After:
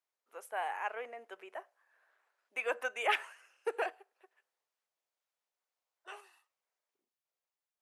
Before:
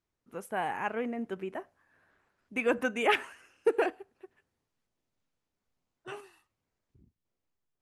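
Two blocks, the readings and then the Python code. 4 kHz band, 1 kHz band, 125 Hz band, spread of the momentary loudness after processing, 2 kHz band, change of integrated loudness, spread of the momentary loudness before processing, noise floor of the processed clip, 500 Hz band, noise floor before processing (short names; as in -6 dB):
-3.5 dB, -3.5 dB, n/a, 19 LU, -3.5 dB, -5.5 dB, 18 LU, under -85 dBFS, -9.0 dB, under -85 dBFS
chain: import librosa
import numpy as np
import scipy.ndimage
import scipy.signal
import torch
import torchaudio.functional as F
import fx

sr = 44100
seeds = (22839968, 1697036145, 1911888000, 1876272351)

y = scipy.signal.sosfilt(scipy.signal.butter(4, 530.0, 'highpass', fs=sr, output='sos'), x)
y = y * 10.0 ** (-3.5 / 20.0)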